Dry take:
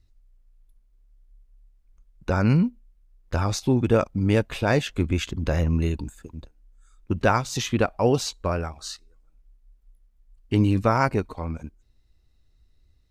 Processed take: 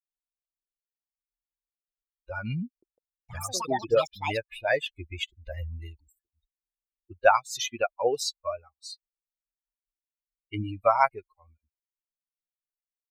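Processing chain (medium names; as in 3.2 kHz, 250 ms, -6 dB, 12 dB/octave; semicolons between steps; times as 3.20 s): expander on every frequency bin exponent 3; resonant low shelf 410 Hz -12 dB, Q 1.5; 2.67–4.86 s: ever faster or slower copies 154 ms, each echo +6 st, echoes 2, each echo -6 dB; trim +4.5 dB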